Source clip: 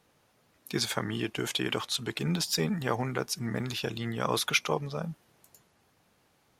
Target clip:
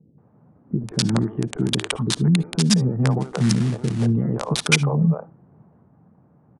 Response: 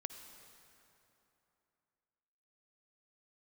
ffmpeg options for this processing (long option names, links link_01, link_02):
-filter_complex "[0:a]highpass=frequency=60:width=0.5412,highpass=frequency=60:width=1.3066,equalizer=frequency=160:width=0.69:gain=13,bandreject=frequency=50:width_type=h:width=6,bandreject=frequency=100:width_type=h:width=6,acrossover=split=1200[link_01][link_02];[link_01]alimiter=limit=-18.5dB:level=0:latency=1:release=389[link_03];[link_02]acrusher=bits=3:mix=0:aa=0.000001[link_04];[link_03][link_04]amix=inputs=2:normalize=0,acrossover=split=440[link_05][link_06];[link_06]adelay=180[link_07];[link_05][link_07]amix=inputs=2:normalize=0,asplit=3[link_08][link_09][link_10];[link_08]afade=type=out:start_time=3.2:duration=0.02[link_11];[link_09]acrusher=bits=4:mode=log:mix=0:aa=0.000001,afade=type=in:start_time=3.2:duration=0.02,afade=type=out:start_time=4.05:duration=0.02[link_12];[link_10]afade=type=in:start_time=4.05:duration=0.02[link_13];[link_11][link_12][link_13]amix=inputs=3:normalize=0,asplit=2[link_14][link_15];[1:a]atrim=start_sample=2205,atrim=end_sample=3528[link_16];[link_15][link_16]afir=irnorm=-1:irlink=0,volume=2.5dB[link_17];[link_14][link_17]amix=inputs=2:normalize=0,aresample=22050,aresample=44100,volume=2.5dB"